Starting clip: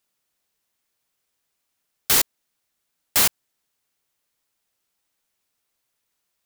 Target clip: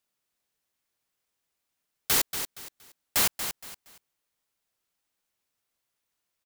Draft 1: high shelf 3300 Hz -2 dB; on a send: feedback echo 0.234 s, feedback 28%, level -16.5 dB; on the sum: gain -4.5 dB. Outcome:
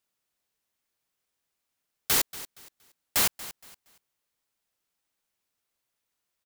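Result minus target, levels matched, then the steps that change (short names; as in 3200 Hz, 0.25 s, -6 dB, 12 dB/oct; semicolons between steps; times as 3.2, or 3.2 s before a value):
echo-to-direct -7.5 dB
change: feedback echo 0.234 s, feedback 28%, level -9 dB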